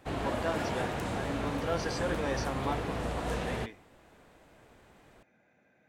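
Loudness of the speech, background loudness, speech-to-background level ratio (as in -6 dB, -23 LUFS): -37.5 LUFS, -35.0 LUFS, -2.5 dB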